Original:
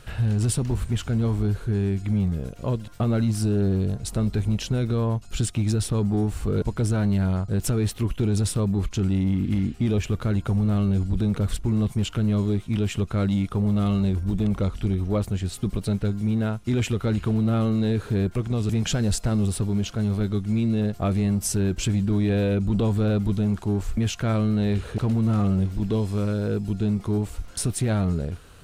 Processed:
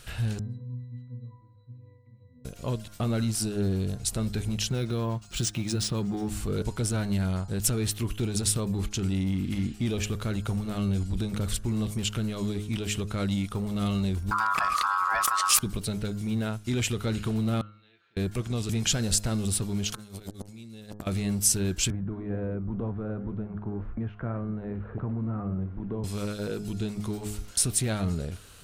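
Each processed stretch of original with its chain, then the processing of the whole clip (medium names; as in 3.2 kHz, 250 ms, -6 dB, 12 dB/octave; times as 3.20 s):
0.39–2.45 s: treble shelf 3.9 kHz -9.5 dB + pitch-class resonator B, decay 0.78 s
4.69–6.29 s: high-pass 40 Hz + comb 5.7 ms, depth 32% + decimation joined by straight lines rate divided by 3×
14.31–15.59 s: ring modulator 1.2 kHz + level flattener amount 100%
17.61–18.17 s: low-pass 2.8 kHz 24 dB/octave + differentiator + feedback comb 170 Hz, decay 0.28 s, mix 80%
19.92–21.07 s: treble shelf 3.9 kHz +10 dB + compressor with a negative ratio -30 dBFS, ratio -0.5 + transformer saturation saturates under 790 Hz
21.90–26.04 s: low-pass 1.5 kHz 24 dB/octave + flange 2 Hz, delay 4.9 ms, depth 7.4 ms, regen -84% + three bands compressed up and down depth 70%
whole clip: treble shelf 2.4 kHz +11 dB; de-hum 104.4 Hz, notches 17; trim -5 dB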